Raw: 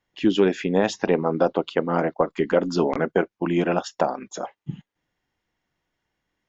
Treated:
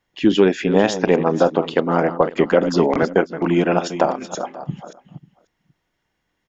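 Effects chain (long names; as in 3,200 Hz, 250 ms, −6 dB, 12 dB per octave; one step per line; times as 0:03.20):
delay that plays each chunk backwards 290 ms, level −11 dB
single-tap delay 541 ms −22 dB
0:02.37–0:03.03: multiband upward and downward compressor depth 40%
level +4.5 dB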